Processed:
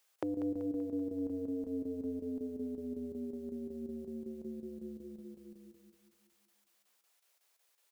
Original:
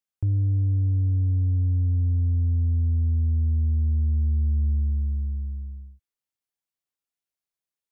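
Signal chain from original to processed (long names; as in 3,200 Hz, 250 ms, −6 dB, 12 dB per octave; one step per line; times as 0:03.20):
high-pass filter 410 Hz 24 dB per octave
square-wave tremolo 5.4 Hz, depth 65%, duty 85%
repeating echo 192 ms, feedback 54%, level −11 dB
level +17.5 dB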